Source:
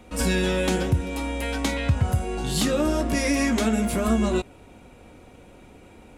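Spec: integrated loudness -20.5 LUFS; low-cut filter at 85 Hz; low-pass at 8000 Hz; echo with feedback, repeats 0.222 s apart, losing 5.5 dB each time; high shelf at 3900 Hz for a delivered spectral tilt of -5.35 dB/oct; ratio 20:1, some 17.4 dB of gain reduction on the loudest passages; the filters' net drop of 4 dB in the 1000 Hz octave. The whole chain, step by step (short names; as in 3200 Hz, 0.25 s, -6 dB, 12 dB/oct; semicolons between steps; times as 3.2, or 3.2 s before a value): HPF 85 Hz; LPF 8000 Hz; bell 1000 Hz -5 dB; high shelf 3900 Hz -9 dB; compressor 20:1, threshold -35 dBFS; feedback echo 0.222 s, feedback 53%, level -5.5 dB; gain +18.5 dB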